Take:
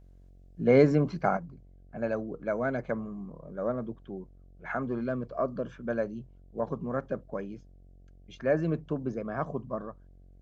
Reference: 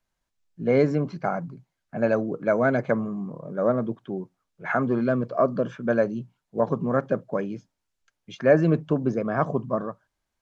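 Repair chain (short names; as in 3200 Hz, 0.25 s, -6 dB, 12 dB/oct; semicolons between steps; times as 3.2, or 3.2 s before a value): de-hum 45.5 Hz, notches 16; gain 0 dB, from 1.37 s +8.5 dB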